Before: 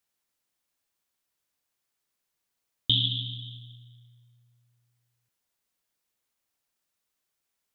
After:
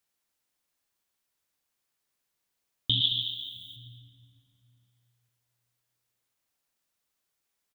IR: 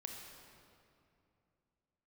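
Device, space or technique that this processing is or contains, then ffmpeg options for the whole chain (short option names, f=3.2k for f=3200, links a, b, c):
ducked reverb: -filter_complex "[0:a]asplit=3[a][b][c];[a]afade=t=out:st=3:d=0.02[d];[b]aemphasis=mode=production:type=riaa,afade=t=in:st=3:d=0.02,afade=t=out:st=3.75:d=0.02[e];[c]afade=t=in:st=3.75:d=0.02[f];[d][e][f]amix=inputs=3:normalize=0,asplit=3[g][h][i];[1:a]atrim=start_sample=2205[j];[h][j]afir=irnorm=-1:irlink=0[k];[i]apad=whole_len=341452[l];[k][l]sidechaincompress=threshold=-45dB:ratio=8:attack=16:release=148,volume=-2dB[m];[g][m]amix=inputs=2:normalize=0,asplit=2[n][o];[o]adelay=221.6,volume=-12dB,highshelf=f=4k:g=-4.99[p];[n][p]amix=inputs=2:normalize=0,volume=-3dB"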